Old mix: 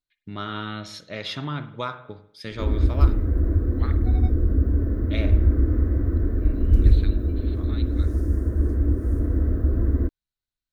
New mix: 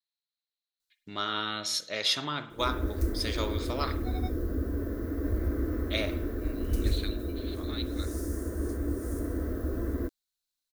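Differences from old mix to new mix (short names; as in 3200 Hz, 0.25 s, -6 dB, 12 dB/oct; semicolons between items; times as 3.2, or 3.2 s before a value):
first voice: entry +0.80 s; master: add tone controls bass -13 dB, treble +14 dB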